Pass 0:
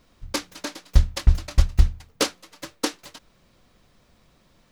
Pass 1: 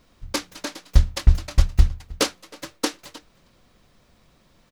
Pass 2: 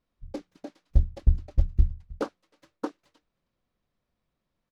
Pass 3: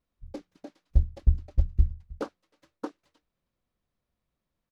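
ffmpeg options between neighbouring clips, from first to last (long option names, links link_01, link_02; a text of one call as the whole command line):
ffmpeg -i in.wav -filter_complex "[0:a]asplit=2[link_01][link_02];[link_02]adelay=314.9,volume=-22dB,highshelf=frequency=4000:gain=-7.08[link_03];[link_01][link_03]amix=inputs=2:normalize=0,volume=1dB" out.wav
ffmpeg -i in.wav -af "aemphasis=mode=reproduction:type=cd,afwtdn=0.0398,volume=-6dB" out.wav
ffmpeg -i in.wav -af "equalizer=frequency=62:width_type=o:width=1.1:gain=4,volume=-3.5dB" out.wav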